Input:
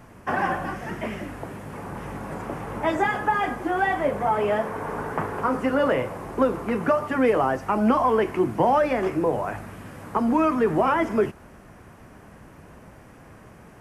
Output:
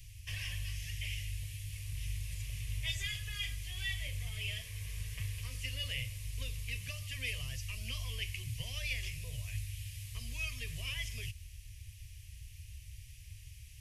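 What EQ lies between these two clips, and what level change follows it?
inverse Chebyshev band-stop 180–1500 Hz, stop band 40 dB; peaking EQ 8.2 kHz -2.5 dB 0.22 oct; +5.0 dB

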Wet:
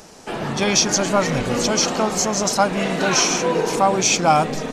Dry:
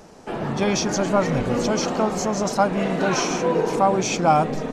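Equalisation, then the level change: treble shelf 2 kHz +11 dB; 0.0 dB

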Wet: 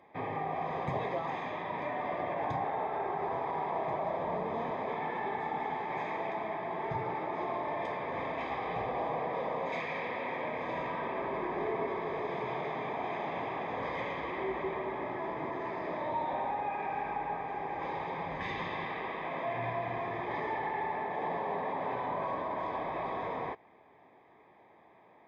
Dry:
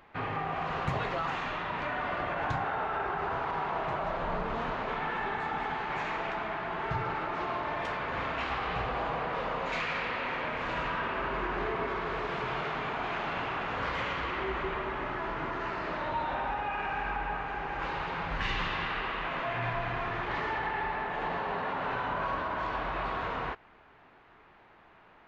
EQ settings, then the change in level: boxcar filter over 31 samples; high-pass 82 Hz; tilt EQ +3.5 dB/octave; +6.5 dB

